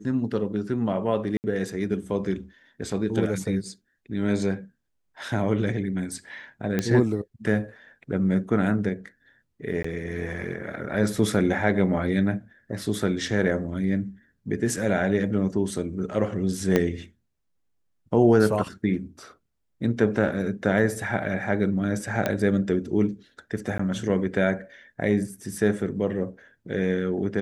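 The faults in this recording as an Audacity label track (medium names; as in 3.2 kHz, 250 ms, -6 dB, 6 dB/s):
1.370000	1.440000	dropout 69 ms
6.790000	6.790000	pop -11 dBFS
9.830000	9.840000	dropout 14 ms
16.760000	16.760000	pop -8 dBFS
22.260000	22.260000	pop -10 dBFS
23.780000	23.790000	dropout 14 ms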